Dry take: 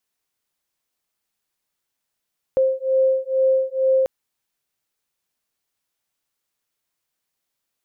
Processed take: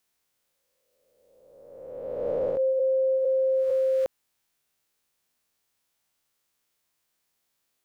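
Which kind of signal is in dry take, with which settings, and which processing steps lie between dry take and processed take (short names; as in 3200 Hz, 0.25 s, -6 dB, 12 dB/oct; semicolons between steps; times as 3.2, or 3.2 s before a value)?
beating tones 526 Hz, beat 2.2 Hz, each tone -19 dBFS 1.49 s
spectral swells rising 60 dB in 1.71 s; compressor, threshold -19 dBFS; limiter -20 dBFS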